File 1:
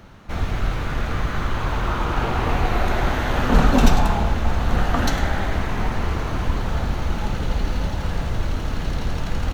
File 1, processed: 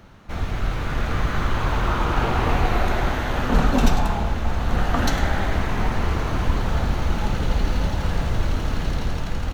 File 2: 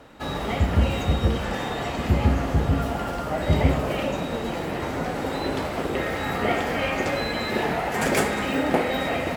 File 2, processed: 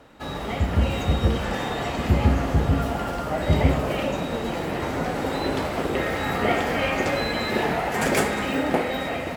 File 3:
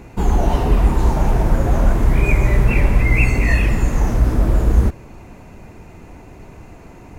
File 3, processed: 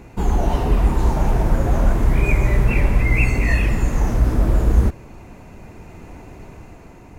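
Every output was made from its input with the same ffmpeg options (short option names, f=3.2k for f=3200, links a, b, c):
-af "dynaudnorm=f=250:g=7:m=4dB,volume=-2.5dB"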